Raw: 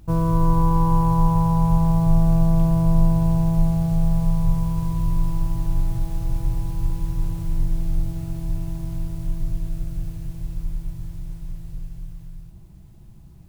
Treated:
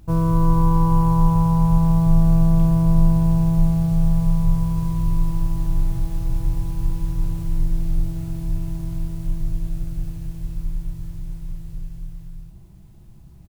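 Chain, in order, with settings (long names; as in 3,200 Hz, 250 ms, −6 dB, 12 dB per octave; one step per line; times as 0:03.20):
double-tracking delay 31 ms −10.5 dB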